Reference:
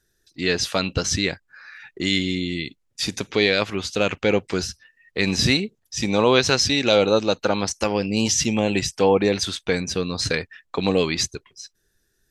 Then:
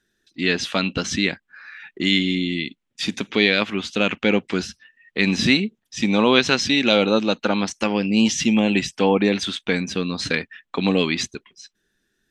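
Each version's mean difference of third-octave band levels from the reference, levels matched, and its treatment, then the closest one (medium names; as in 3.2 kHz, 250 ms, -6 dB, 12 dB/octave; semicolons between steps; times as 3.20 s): 2.5 dB: FFT filter 110 Hz 0 dB, 220 Hz +15 dB, 460 Hz +6 dB, 3.3 kHz +13 dB, 4.7 kHz +4 dB, 8.3 kHz +3 dB, 13 kHz -3 dB; trim -8.5 dB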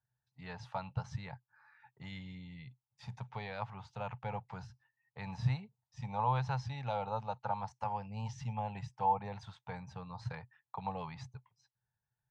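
8.5 dB: two resonant band-passes 330 Hz, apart 2.8 oct; trim -2 dB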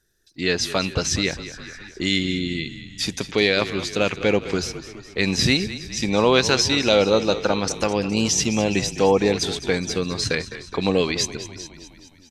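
4.5 dB: frequency-shifting echo 208 ms, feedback 60%, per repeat -31 Hz, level -13.5 dB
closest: first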